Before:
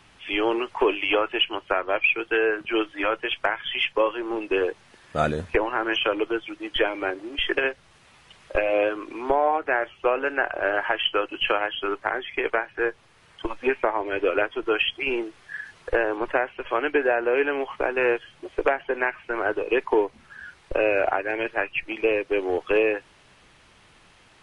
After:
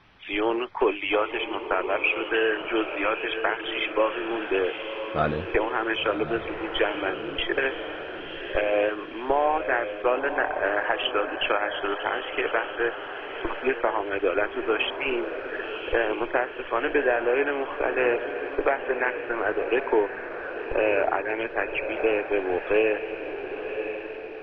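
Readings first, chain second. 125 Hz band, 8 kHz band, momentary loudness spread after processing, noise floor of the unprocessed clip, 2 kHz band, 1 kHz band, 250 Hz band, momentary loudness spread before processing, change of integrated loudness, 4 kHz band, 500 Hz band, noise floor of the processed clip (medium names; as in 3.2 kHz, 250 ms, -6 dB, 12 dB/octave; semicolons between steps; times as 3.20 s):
-0.5 dB, no reading, 8 LU, -56 dBFS, -1.0 dB, -0.5 dB, -0.5 dB, 7 LU, -1.5 dB, -3.5 dB, -0.5 dB, -37 dBFS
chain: low-pass 3.3 kHz 12 dB/octave; echo that smears into a reverb 1030 ms, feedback 49%, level -8 dB; trim -1.5 dB; MP2 32 kbps 24 kHz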